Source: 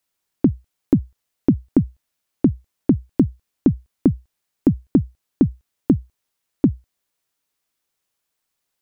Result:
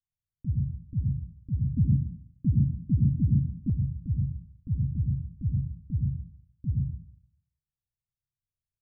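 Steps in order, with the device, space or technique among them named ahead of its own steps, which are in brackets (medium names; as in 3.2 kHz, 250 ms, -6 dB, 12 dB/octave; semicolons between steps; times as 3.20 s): club heard from the street (peak limiter -15 dBFS, peak gain reduction 10.5 dB; low-pass 130 Hz 24 dB/octave; reverberation RT60 0.55 s, pre-delay 76 ms, DRR -1 dB); 1.77–3.70 s: peaking EQ 250 Hz +12.5 dB 1.6 oct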